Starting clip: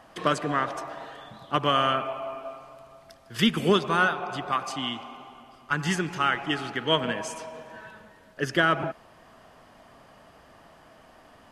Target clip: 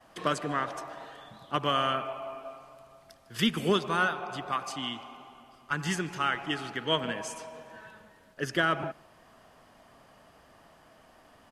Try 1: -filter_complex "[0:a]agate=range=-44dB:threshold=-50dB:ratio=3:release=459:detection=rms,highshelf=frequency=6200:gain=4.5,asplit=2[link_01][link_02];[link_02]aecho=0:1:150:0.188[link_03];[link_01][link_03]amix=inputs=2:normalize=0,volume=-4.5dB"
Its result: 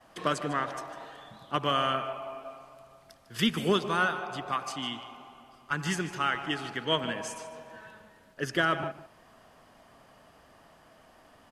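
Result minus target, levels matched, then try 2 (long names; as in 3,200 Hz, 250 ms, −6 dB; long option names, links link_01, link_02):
echo-to-direct +12 dB
-filter_complex "[0:a]agate=range=-44dB:threshold=-50dB:ratio=3:release=459:detection=rms,highshelf=frequency=6200:gain=4.5,asplit=2[link_01][link_02];[link_02]aecho=0:1:150:0.0473[link_03];[link_01][link_03]amix=inputs=2:normalize=0,volume=-4.5dB"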